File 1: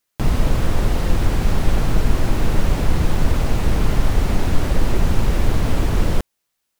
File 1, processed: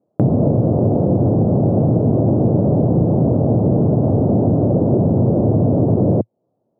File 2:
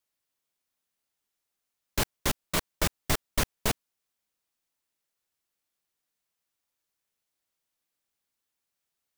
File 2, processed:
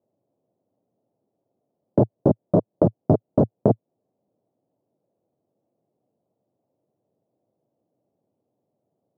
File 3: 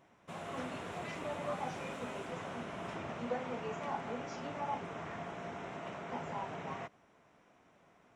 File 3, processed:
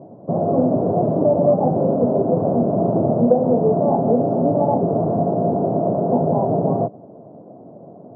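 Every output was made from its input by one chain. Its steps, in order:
elliptic band-pass filter 110–650 Hz, stop band 50 dB
in parallel at +2 dB: brickwall limiter −23 dBFS
on the sum: downward compressor 2 to 1, threshold −35 dBFS
normalise the peak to −3 dBFS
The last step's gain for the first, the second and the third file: +15.5, +16.0, +21.0 decibels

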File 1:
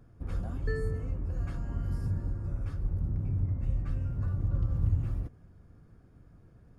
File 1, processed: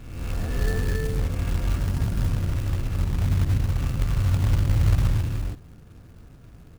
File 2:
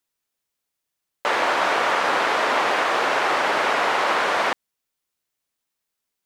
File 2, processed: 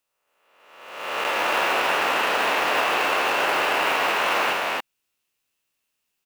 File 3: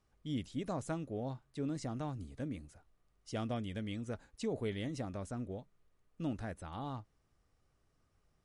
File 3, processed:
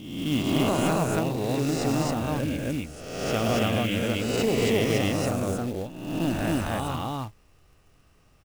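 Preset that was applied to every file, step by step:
peak hold with a rise ahead of every peak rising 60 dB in 1.09 s
parametric band 2,700 Hz +9.5 dB 0.26 octaves
downward compressor 2 to 1, threshold −23 dBFS
loudspeakers that aren't time-aligned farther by 37 metres −8 dB, 94 metres 0 dB
floating-point word with a short mantissa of 2 bits
normalise the peak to −9 dBFS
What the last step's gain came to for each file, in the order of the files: +3.0, −3.0, +9.0 decibels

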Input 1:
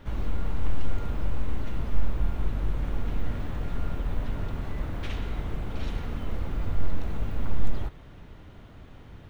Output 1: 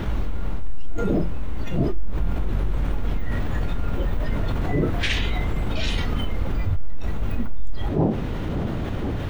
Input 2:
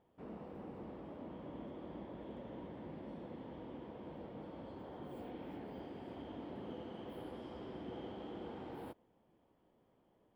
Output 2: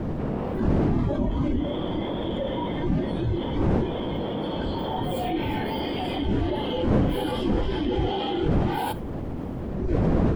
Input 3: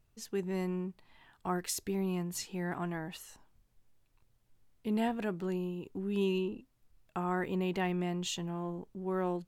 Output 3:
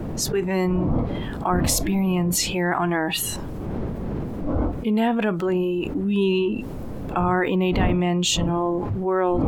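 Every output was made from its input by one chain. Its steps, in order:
wind on the microphone 270 Hz −41 dBFS
noise reduction from a noise print of the clip's start 12 dB
envelope flattener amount 70%
normalise the peak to −9 dBFS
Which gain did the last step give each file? −2.0, +8.0, +6.5 decibels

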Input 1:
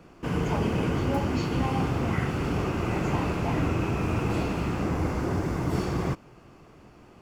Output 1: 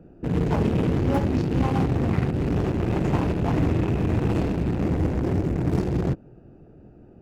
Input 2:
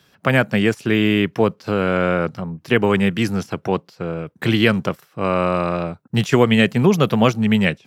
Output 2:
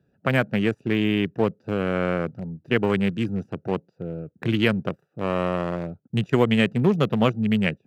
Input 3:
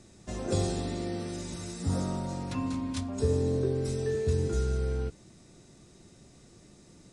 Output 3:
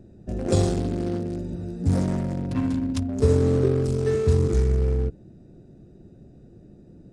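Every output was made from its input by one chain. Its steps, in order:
adaptive Wiener filter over 41 samples
loudness normalisation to −24 LKFS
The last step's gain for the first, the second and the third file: +5.0, −4.5, +8.5 decibels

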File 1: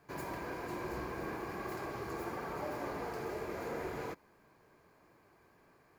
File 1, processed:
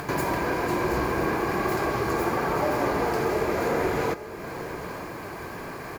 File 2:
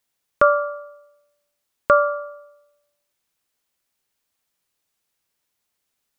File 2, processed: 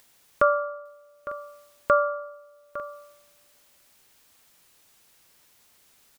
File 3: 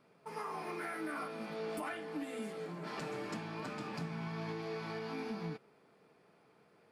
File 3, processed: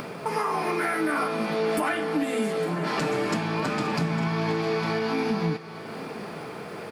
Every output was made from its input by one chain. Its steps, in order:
upward compression, threshold −37 dBFS
multi-tap delay 856/900 ms −15/−19 dB
loudness normalisation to −27 LKFS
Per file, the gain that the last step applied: +14.5, −5.0, +14.0 decibels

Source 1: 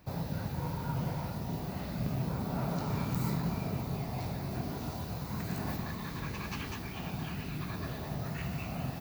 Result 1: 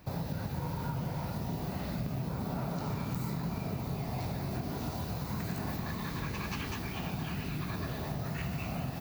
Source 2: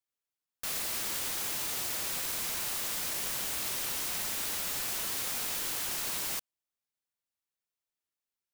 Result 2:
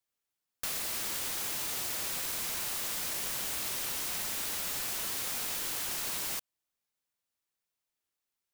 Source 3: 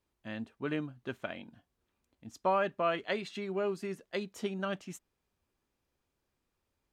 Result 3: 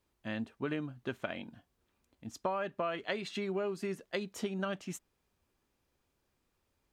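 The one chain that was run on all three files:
downward compressor 6 to 1, threshold −35 dBFS
level +3.5 dB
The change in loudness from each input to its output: 0.0, −1.0, −2.5 LU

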